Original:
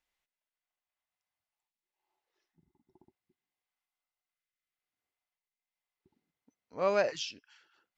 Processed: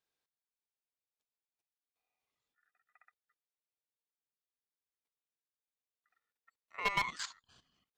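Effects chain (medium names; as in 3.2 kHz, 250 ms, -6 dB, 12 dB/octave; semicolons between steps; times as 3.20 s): level held to a coarse grid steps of 13 dB; ring modulator 1.6 kHz; one-sided clip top -32 dBFS; trim +3 dB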